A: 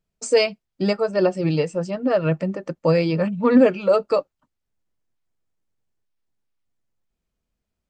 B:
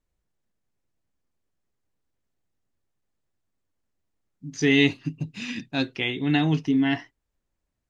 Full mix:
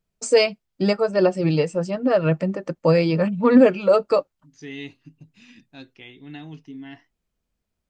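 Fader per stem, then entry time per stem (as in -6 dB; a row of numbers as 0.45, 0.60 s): +1.0, -16.5 dB; 0.00, 0.00 s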